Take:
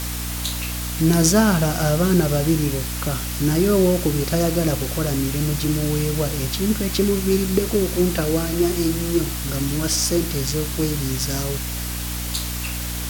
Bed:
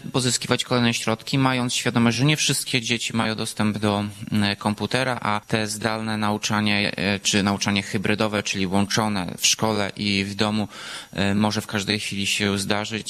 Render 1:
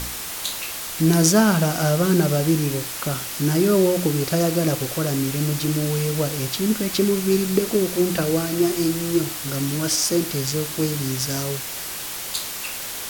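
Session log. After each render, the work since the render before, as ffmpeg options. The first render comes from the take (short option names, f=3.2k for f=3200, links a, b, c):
-af "bandreject=f=60:t=h:w=4,bandreject=f=120:t=h:w=4,bandreject=f=180:t=h:w=4,bandreject=f=240:t=h:w=4,bandreject=f=300:t=h:w=4"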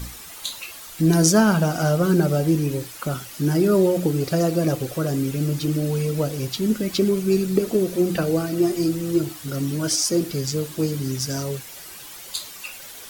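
-af "afftdn=nr=11:nf=-31"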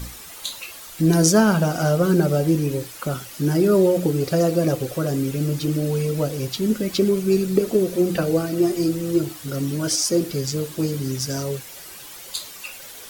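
-af "equalizer=f=480:t=o:w=0.32:g=7,bandreject=f=470:w=12"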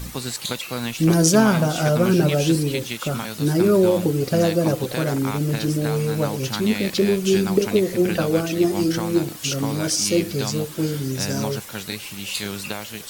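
-filter_complex "[1:a]volume=-8dB[a];[0:a][a]amix=inputs=2:normalize=0"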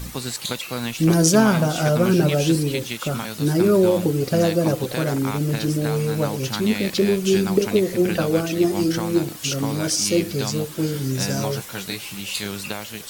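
-filter_complex "[0:a]asettb=1/sr,asplit=3[a][b][c];[a]atrim=end=10.944[d];[b]atrim=start=10.94:end=12.21,asetpts=PTS-STARTPTS,afade=t=in:d=0.004:c=qsin,afade=t=out:st=1.266:d=0.004:c=qsin,asplit=2[e][f];[f]adelay=16,volume=-6dB[g];[e][g]amix=inputs=2:normalize=0,atrim=end_sample=56007[h];[c]atrim=start=12.206[i];[d][h]acrossfade=d=0.004:c1=hsin:c2=qsin[j];[j][i]acrossfade=d=0.004:c1=qsin:c2=hsin"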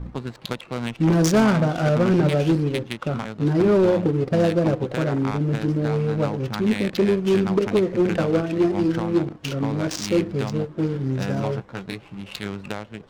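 -af "volume=12.5dB,asoftclip=hard,volume=-12.5dB,adynamicsmooth=sensitivity=2:basefreq=600"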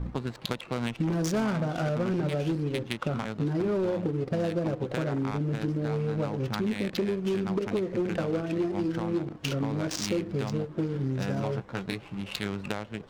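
-af "acompressor=threshold=-26dB:ratio=6"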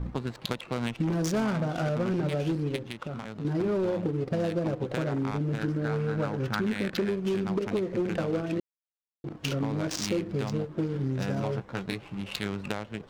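-filter_complex "[0:a]asettb=1/sr,asplit=3[a][b][c];[a]atrim=end=2.764[d];[b]atrim=start=2.76:end=3.45,asetpts=PTS-STARTPTS,afade=t=in:d=0.004:c=qsin,afade=t=out:st=0.686:d=0.004:c=qsin,acompressor=threshold=-37dB:ratio=2:attack=3.2:release=140:knee=1:detection=peak[e];[c]atrim=start=3.446[f];[d][e]acrossfade=d=0.004:c1=hsin:c2=qsin[g];[g][f]acrossfade=d=0.004:c1=qsin:c2=hsin,asettb=1/sr,asplit=3[h][i][j];[h]atrim=end=5.584[k];[i]atrim=start=5.58:end=7.1,asetpts=PTS-STARTPTS,afade=t=in:d=0.004:c=qsin,afade=t=out:st=1.516:d=0.004:c=qsin,equalizer=f=1.5k:t=o:w=0.49:g=8.5[l];[j]atrim=start=7.096[m];[k][l]acrossfade=d=0.004:c1=hsin:c2=qsin[n];[n][m]acrossfade=d=0.004:c1=qsin:c2=hsin,asplit=3[o][p][q];[o]atrim=end=8.6,asetpts=PTS-STARTPTS,afade=t=out:st=8.596:d=0.004:c=hsin[r];[p]atrim=start=8.6:end=9.24,asetpts=PTS-STARTPTS,volume=0[s];[q]atrim=start=9.24,asetpts=PTS-STARTPTS,afade=t=in:d=0.004:c=hsin[t];[r][s][t]concat=n=3:v=0:a=1"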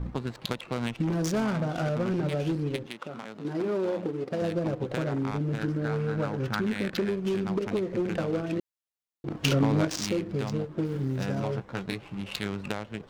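-filter_complex "[0:a]asettb=1/sr,asplit=3[a][b][c];[a]atrim=end=2.864[d];[b]atrim=start=2.86:end=4.42,asetpts=PTS-STARTPTS,afade=t=in:d=0.004:c=qsin,afade=t=out:st=1.556:d=0.004:c=qsin,highpass=230[e];[c]atrim=start=4.416[f];[d][e]acrossfade=d=0.004:c1=hsin:c2=qsin[g];[g][f]acrossfade=d=0.004:c1=qsin:c2=hsin,asettb=1/sr,asplit=3[h][i][j];[h]atrim=end=9.284[k];[i]atrim=start=9.28:end=9.85,asetpts=PTS-STARTPTS,afade=t=in:d=0.004:c=qsin,afade=t=out:st=0.566:d=0.004:c=qsin,acontrast=58[l];[j]atrim=start=9.846[m];[k][l]acrossfade=d=0.004:c1=hsin:c2=qsin[n];[n][m]acrossfade=d=0.004:c1=qsin:c2=hsin,asettb=1/sr,asplit=3[o][p][q];[o]atrim=end=10.854[r];[p]atrim=start=10.85:end=11.26,asetpts=PTS-STARTPTS,afade=t=in:d=0.004:c=qsin,afade=t=out:st=0.406:d=0.004:c=qsin,aeval=exprs='val(0)*gte(abs(val(0)),0.00422)':c=same[s];[q]atrim=start=11.256[t];[r][s]acrossfade=d=0.004:c1=hsin:c2=qsin[u];[u][t]acrossfade=d=0.004:c1=qsin:c2=hsin"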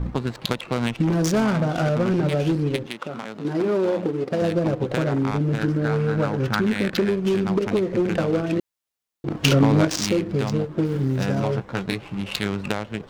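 -af "volume=7dB"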